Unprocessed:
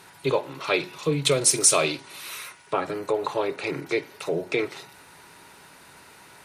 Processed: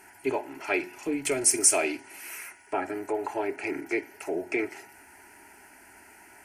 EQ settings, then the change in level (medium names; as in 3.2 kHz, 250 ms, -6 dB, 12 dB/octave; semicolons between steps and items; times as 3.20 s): static phaser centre 760 Hz, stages 8; 0.0 dB